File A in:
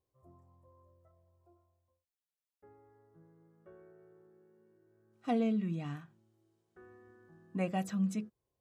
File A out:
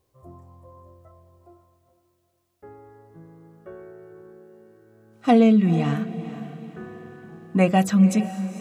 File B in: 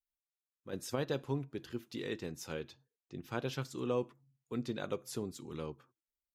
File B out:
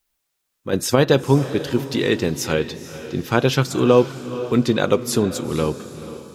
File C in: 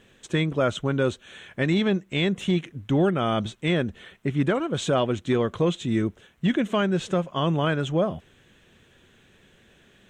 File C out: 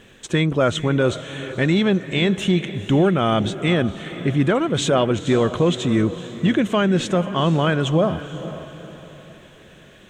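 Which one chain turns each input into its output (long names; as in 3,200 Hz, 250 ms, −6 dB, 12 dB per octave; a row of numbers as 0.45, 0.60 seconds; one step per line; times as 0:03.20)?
in parallel at +1 dB: brickwall limiter −22 dBFS
on the sum: feedback delay with all-pass diffusion 479 ms, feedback 42%, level −13 dB
loudness normalisation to −20 LKFS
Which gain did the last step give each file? +9.0, +13.5, +1.5 decibels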